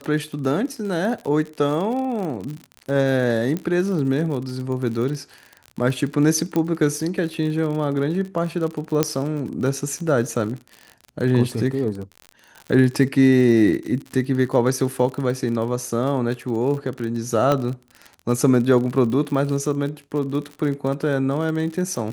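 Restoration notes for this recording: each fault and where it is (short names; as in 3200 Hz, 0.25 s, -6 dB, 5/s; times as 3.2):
crackle 47/s -28 dBFS
3.57 pop -14 dBFS
6.56 pop -11 dBFS
9.03 pop -3 dBFS
17.52 pop -8 dBFS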